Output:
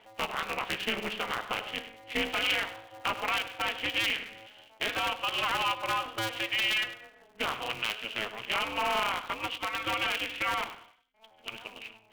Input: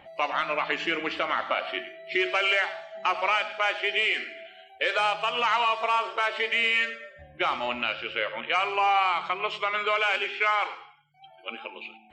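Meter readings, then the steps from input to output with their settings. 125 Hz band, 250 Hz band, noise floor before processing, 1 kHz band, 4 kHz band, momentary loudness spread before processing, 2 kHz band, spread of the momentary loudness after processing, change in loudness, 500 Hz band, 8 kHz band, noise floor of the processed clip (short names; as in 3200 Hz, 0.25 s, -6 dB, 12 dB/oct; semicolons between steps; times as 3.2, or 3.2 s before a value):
n/a, -2.0 dB, -54 dBFS, -7.0 dB, -1.0 dB, 14 LU, -5.5 dB, 11 LU, -5.0 dB, -7.5 dB, +6.5 dB, -60 dBFS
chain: speaker cabinet 250–3900 Hz, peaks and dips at 320 Hz +9 dB, 1100 Hz +3 dB, 2900 Hz +9 dB; polarity switched at an audio rate 110 Hz; gain -8 dB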